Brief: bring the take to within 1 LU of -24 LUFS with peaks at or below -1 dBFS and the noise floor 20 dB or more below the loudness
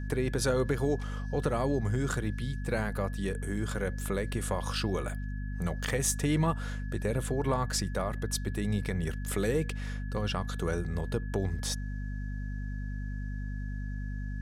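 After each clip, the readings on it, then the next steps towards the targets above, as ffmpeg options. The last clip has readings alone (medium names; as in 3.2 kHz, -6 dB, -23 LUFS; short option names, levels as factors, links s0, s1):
hum 50 Hz; highest harmonic 250 Hz; hum level -33 dBFS; steady tone 1.7 kHz; tone level -49 dBFS; loudness -32.5 LUFS; peak level -16.0 dBFS; loudness target -24.0 LUFS
-> -af "bandreject=f=50:t=h:w=4,bandreject=f=100:t=h:w=4,bandreject=f=150:t=h:w=4,bandreject=f=200:t=h:w=4,bandreject=f=250:t=h:w=4"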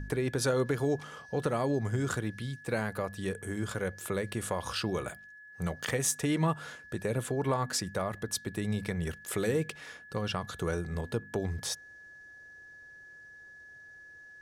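hum not found; steady tone 1.7 kHz; tone level -49 dBFS
-> -af "bandreject=f=1700:w=30"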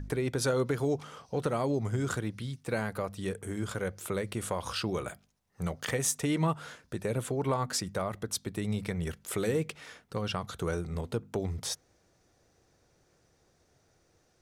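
steady tone not found; loudness -33.0 LUFS; peak level -16.5 dBFS; loudness target -24.0 LUFS
-> -af "volume=2.82"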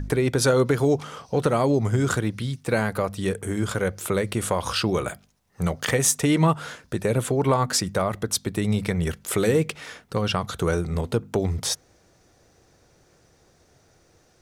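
loudness -24.0 LUFS; peak level -7.5 dBFS; noise floor -60 dBFS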